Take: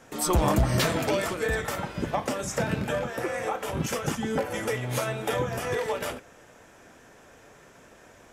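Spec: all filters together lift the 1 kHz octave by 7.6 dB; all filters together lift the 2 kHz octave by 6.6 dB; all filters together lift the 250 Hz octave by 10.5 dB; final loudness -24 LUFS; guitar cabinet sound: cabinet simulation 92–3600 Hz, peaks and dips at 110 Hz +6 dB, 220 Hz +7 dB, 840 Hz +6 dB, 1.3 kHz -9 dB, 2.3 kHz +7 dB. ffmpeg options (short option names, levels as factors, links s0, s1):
-af "highpass=92,equalizer=f=110:t=q:w=4:g=6,equalizer=f=220:t=q:w=4:g=7,equalizer=f=840:t=q:w=4:g=6,equalizer=f=1300:t=q:w=4:g=-9,equalizer=f=2300:t=q:w=4:g=7,lowpass=f=3600:w=0.5412,lowpass=f=3600:w=1.3066,equalizer=f=250:t=o:g=8.5,equalizer=f=1000:t=o:g=5.5,equalizer=f=2000:t=o:g=4.5,volume=0.794"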